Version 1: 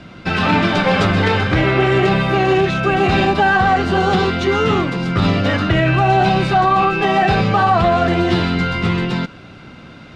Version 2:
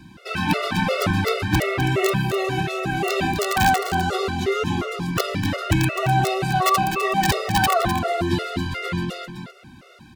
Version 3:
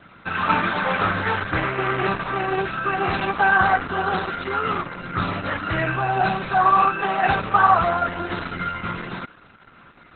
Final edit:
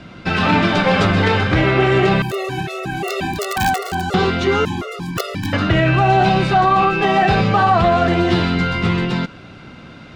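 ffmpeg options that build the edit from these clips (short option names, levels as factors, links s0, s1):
-filter_complex "[1:a]asplit=2[s0][s1];[0:a]asplit=3[s2][s3][s4];[s2]atrim=end=2.222[s5];[s0]atrim=start=2.218:end=4.142[s6];[s3]atrim=start=4.138:end=4.652[s7];[s1]atrim=start=4.648:end=5.532[s8];[s4]atrim=start=5.528[s9];[s5][s6]acrossfade=d=0.004:c1=hsin:c2=hsin[s10];[s10][s7]acrossfade=d=0.004:c1=hsin:c2=hsin[s11];[s11][s8]acrossfade=d=0.004:c1=hsin:c2=hsin[s12];[s12][s9]acrossfade=d=0.004:c1=hsin:c2=hsin"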